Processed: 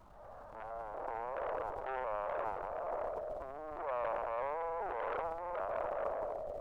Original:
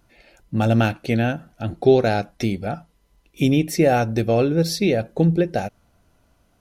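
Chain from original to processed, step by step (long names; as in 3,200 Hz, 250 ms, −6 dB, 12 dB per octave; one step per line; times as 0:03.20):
peak hold with a decay on every bin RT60 2.56 s
brickwall limiter −8 dBFS, peak gain reduction 6.5 dB
linear-prediction vocoder at 8 kHz pitch kept
downward compressor 4 to 1, threshold −22 dBFS, peak gain reduction 10 dB
Butterworth low-pass 1,200 Hz 48 dB per octave, from 0:00.62 610 Hz
soft clipping −27 dBFS, distortion −8 dB
speech leveller 2 s
high-pass filter 710 Hz 24 dB per octave
background noise brown −64 dBFS
transient designer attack −4 dB, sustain +11 dB
level +5.5 dB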